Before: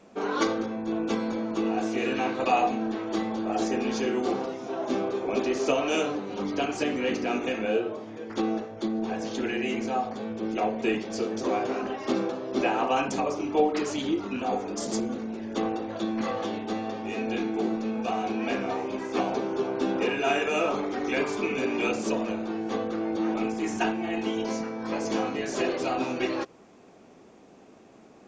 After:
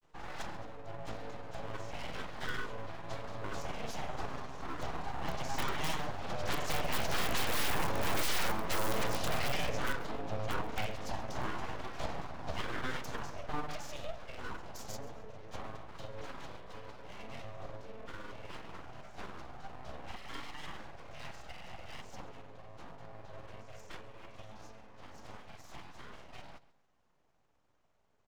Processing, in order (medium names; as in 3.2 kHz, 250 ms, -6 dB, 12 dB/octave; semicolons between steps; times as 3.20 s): Doppler pass-by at 8.20 s, 5 m/s, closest 1.3 m; hum notches 50/100/150/200/250 Hz; in parallel at +0.5 dB: compression 5:1, threshold -52 dBFS, peak gain reduction 24 dB; on the sum: integer overflow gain 34 dB; granulator 100 ms, grains 20 per s, spray 21 ms, pitch spread up and down by 0 st; full-wave rectifier; feedback delay 134 ms, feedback 28%, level -18 dB; trim +12 dB